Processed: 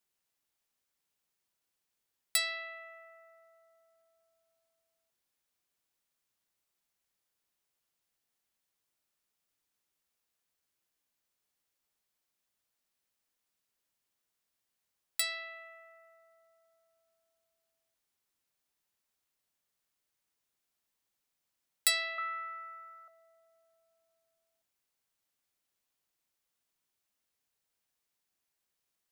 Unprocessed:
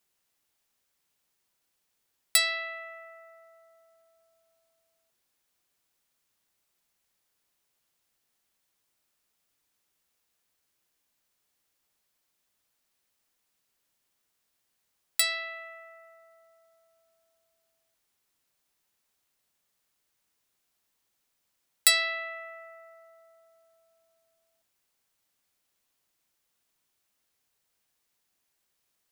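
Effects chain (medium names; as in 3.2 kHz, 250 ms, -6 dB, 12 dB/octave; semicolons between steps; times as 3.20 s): 22.18–23.08 s: resonant high-pass 1.2 kHz, resonance Q 12; trim -7 dB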